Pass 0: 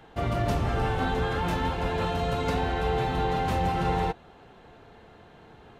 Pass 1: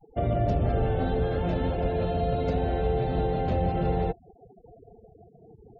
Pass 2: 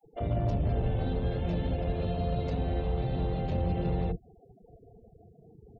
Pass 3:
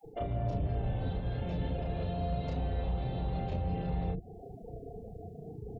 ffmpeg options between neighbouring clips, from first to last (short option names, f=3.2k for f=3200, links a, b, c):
-filter_complex "[0:a]afftfilt=real='re*gte(hypot(re,im),0.0112)':imag='im*gte(hypot(re,im),0.0112)':win_size=1024:overlap=0.75,lowshelf=f=780:t=q:w=3:g=6.5,acrossover=split=170[a][b];[b]acompressor=threshold=-23dB:ratio=2.5[c];[a][c]amix=inputs=2:normalize=0,volume=-4dB"
-filter_complex "[0:a]equalizer=f=1.1k:t=o:w=1.1:g=-13.5,asoftclip=type=tanh:threshold=-21dB,acrossover=split=360[a][b];[a]adelay=40[c];[c][b]amix=inputs=2:normalize=0"
-filter_complex "[0:a]areverse,acompressor=threshold=-35dB:ratio=6,areverse,alimiter=level_in=12dB:limit=-24dB:level=0:latency=1:release=267,volume=-12dB,asplit=2[a][b];[b]adelay=33,volume=-3dB[c];[a][c]amix=inputs=2:normalize=0,volume=8.5dB"